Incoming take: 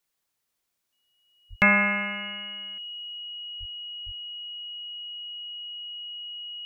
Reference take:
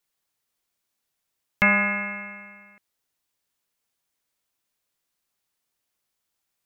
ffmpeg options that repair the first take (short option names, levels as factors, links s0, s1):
-filter_complex "[0:a]bandreject=f=2900:w=30,asplit=3[s0][s1][s2];[s0]afade=t=out:st=1.49:d=0.02[s3];[s1]highpass=f=140:w=0.5412,highpass=f=140:w=1.3066,afade=t=in:st=1.49:d=0.02,afade=t=out:st=1.61:d=0.02[s4];[s2]afade=t=in:st=1.61:d=0.02[s5];[s3][s4][s5]amix=inputs=3:normalize=0,asplit=3[s6][s7][s8];[s6]afade=t=out:st=3.59:d=0.02[s9];[s7]highpass=f=140:w=0.5412,highpass=f=140:w=1.3066,afade=t=in:st=3.59:d=0.02,afade=t=out:st=3.71:d=0.02[s10];[s8]afade=t=in:st=3.71:d=0.02[s11];[s9][s10][s11]amix=inputs=3:normalize=0,asplit=3[s12][s13][s14];[s12]afade=t=out:st=4.05:d=0.02[s15];[s13]highpass=f=140:w=0.5412,highpass=f=140:w=1.3066,afade=t=in:st=4.05:d=0.02,afade=t=out:st=4.17:d=0.02[s16];[s14]afade=t=in:st=4.17:d=0.02[s17];[s15][s16][s17]amix=inputs=3:normalize=0,asetnsamples=n=441:p=0,asendcmd='3.18 volume volume 8dB',volume=1"